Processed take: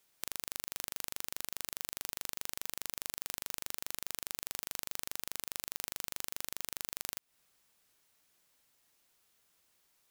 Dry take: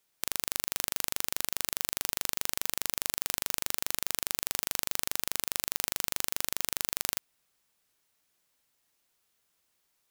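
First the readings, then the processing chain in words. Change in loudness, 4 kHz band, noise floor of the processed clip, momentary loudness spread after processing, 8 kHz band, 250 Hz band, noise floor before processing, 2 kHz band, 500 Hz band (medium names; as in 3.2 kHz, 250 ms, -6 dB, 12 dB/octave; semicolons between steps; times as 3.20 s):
-8.5 dB, -8.5 dB, -83 dBFS, 0 LU, -8.5 dB, -8.5 dB, -76 dBFS, -8.5 dB, -8.5 dB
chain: compression 6:1, threshold -35 dBFS, peak gain reduction 11 dB; trim +2.5 dB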